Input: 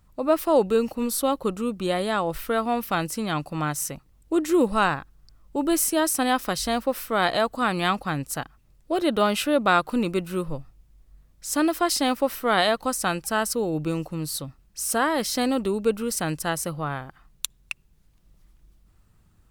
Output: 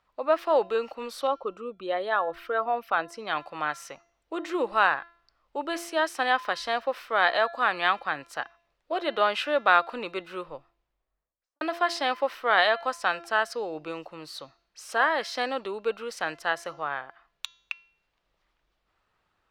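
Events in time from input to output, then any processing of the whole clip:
1.27–3.27 s: resonances exaggerated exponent 1.5
10.40–11.61 s: studio fade out
whole clip: three-band isolator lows -23 dB, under 450 Hz, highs -24 dB, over 4.5 kHz; de-hum 340.9 Hz, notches 20; dynamic bell 1.7 kHz, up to +6 dB, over -44 dBFS, Q 5.8

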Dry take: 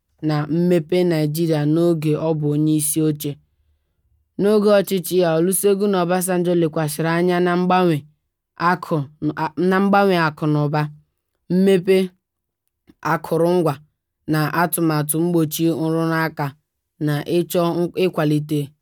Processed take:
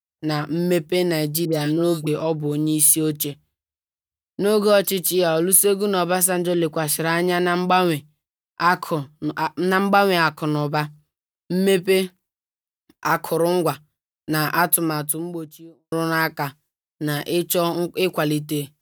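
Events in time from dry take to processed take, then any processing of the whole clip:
1.45–2.07 s: phase dispersion highs, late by 78 ms, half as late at 1.2 kHz
14.55–15.92 s: studio fade out
whole clip: expander -44 dBFS; tilt EQ +2 dB/octave

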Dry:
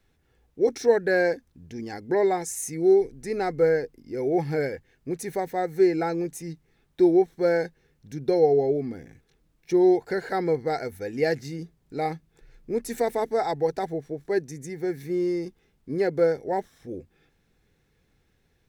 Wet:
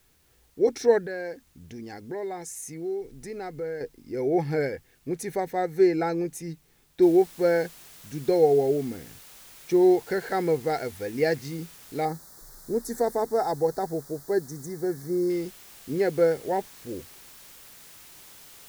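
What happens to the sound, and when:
1.06–3.81 s: compression 2:1, threshold -39 dBFS
7.02 s: noise floor step -66 dB -49 dB
12.05–15.30 s: Butterworth band-stop 2.7 kHz, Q 1

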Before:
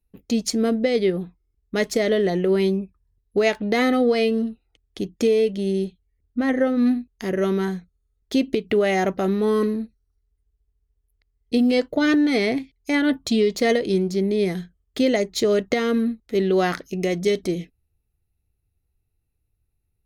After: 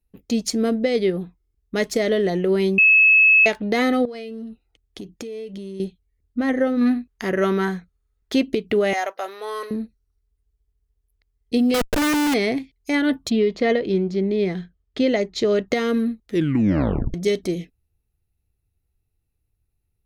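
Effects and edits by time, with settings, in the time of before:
2.78–3.46 s: bleep 2.59 kHz -10 dBFS
4.05–5.80 s: compression 10:1, threshold -30 dBFS
6.81–8.43 s: peaking EQ 1.4 kHz +7.5 dB 1.9 oct
8.93–9.71 s: high-pass 580 Hz 24 dB/octave
11.74–12.34 s: Schmitt trigger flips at -30.5 dBFS
13.29–15.67 s: low-pass 2.8 kHz -> 5.4 kHz
16.27 s: tape stop 0.87 s

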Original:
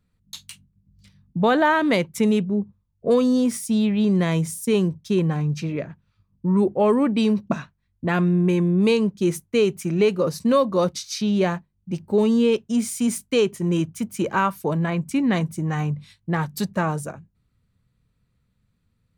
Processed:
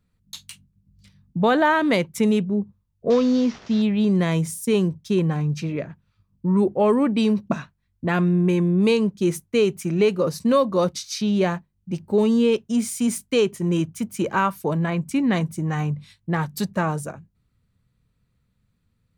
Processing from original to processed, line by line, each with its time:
3.10–3.82 s: CVSD coder 32 kbps

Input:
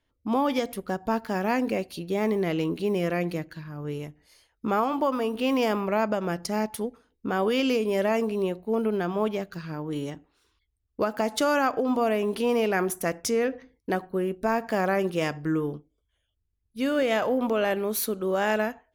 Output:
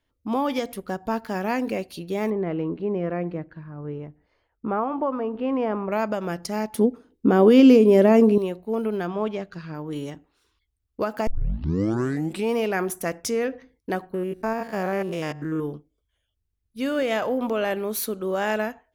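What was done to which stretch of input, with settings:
2.30–5.92 s: low-pass 1.4 kHz
6.75–8.38 s: peaking EQ 280 Hz +14 dB 2.2 oct
9.07–9.75 s: distance through air 72 m
11.27 s: tape start 1.28 s
14.14–15.60 s: spectrogram pixelated in time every 100 ms

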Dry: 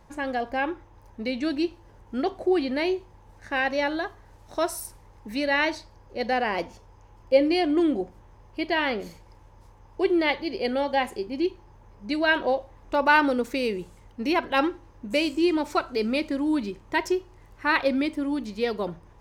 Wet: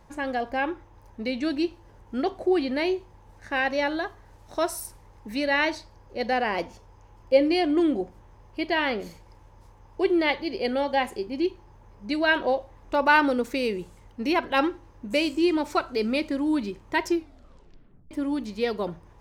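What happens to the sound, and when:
17.07 s: tape stop 1.04 s

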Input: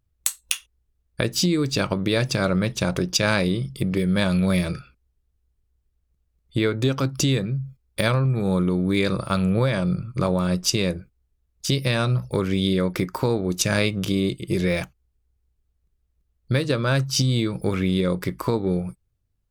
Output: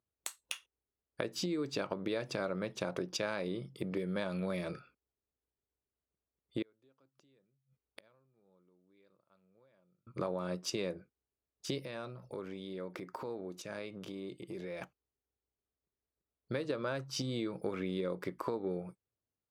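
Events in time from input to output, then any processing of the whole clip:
6.62–10.07 s: inverted gate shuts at -23 dBFS, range -37 dB
11.81–14.82 s: compression 5:1, threshold -29 dBFS
whole clip: high-pass 450 Hz 12 dB/octave; tilt EQ -3.5 dB/octave; compression, threshold -24 dBFS; trim -7.5 dB

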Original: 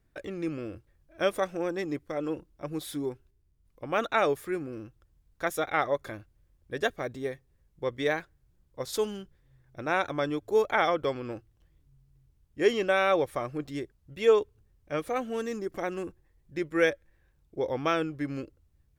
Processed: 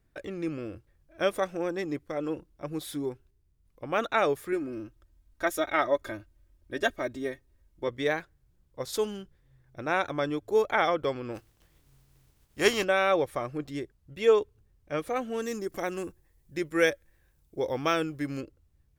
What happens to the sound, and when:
4.52–7.88 s: comb 3.2 ms
11.34–12.83 s: spectral contrast reduction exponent 0.65
15.42–18.41 s: treble shelf 5.6 kHz +11.5 dB

